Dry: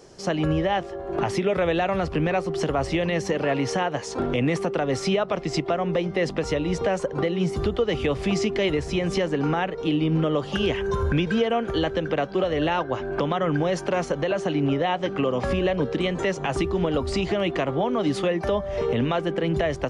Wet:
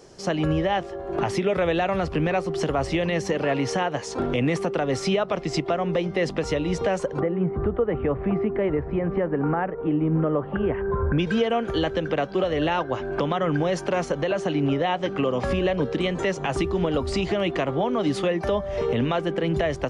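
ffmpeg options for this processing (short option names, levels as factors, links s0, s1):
-filter_complex "[0:a]asplit=3[s0][s1][s2];[s0]afade=t=out:st=7.19:d=0.02[s3];[s1]lowpass=f=1700:w=0.5412,lowpass=f=1700:w=1.3066,afade=t=in:st=7.19:d=0.02,afade=t=out:st=11.18:d=0.02[s4];[s2]afade=t=in:st=11.18:d=0.02[s5];[s3][s4][s5]amix=inputs=3:normalize=0"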